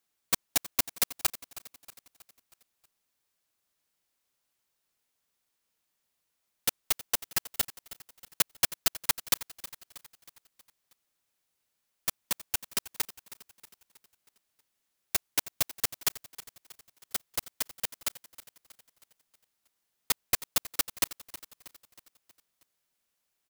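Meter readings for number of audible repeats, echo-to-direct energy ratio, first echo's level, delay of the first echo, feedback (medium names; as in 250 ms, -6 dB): 4, -15.0 dB, -16.5 dB, 318 ms, 51%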